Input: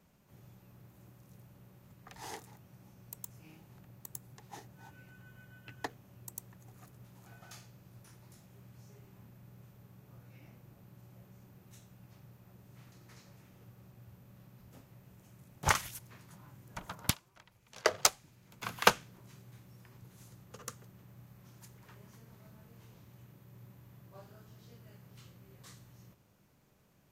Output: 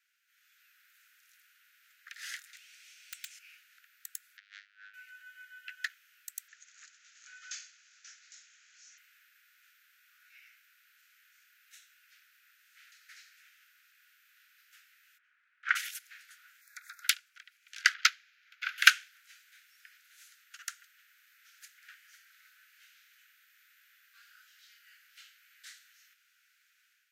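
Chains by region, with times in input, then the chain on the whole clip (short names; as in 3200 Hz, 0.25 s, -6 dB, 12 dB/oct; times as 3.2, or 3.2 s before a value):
2.53–3.39 band shelf 4500 Hz +11 dB 2.4 oct + wrapped overs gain 34.5 dB
4.37–4.94 LPF 4400 Hz 24 dB/oct + robotiser 101 Hz + Doppler distortion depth 0.19 ms
6.48–8.98 synth low-pass 6900 Hz, resonance Q 3.4 + careless resampling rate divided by 3×, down none, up filtered
15.17–15.75 LPF 1400 Hz + buzz 120 Hz, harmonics 8, -55 dBFS -1 dB/oct
16.61–17.03 compressor 3:1, threshold -47 dBFS + Butterworth band-stop 3000 Hz, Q 2.4 + high shelf 8700 Hz +5 dB
17.94–18.78 running mean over 5 samples + bell 350 Hz +5.5 dB 2.7 oct
whole clip: steep high-pass 1400 Hz 96 dB/oct; high shelf 4700 Hz -10 dB; AGC gain up to 8 dB; gain +3 dB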